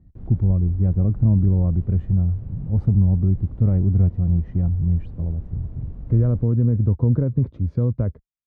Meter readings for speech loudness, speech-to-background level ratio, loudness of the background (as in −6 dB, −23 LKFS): −21.0 LKFS, 18.0 dB, −39.0 LKFS